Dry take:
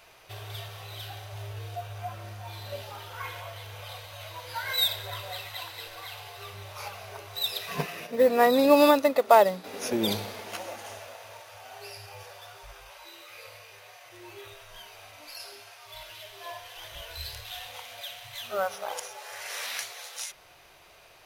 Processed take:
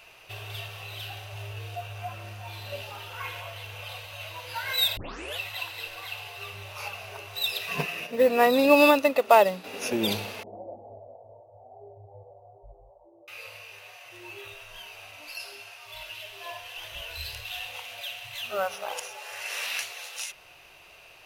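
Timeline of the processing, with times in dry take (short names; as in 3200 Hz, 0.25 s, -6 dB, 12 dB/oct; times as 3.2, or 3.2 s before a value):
4.97 tape start 0.42 s
10.43–13.28 steep low-pass 760 Hz 48 dB/oct
whole clip: bell 2700 Hz +12.5 dB 0.22 oct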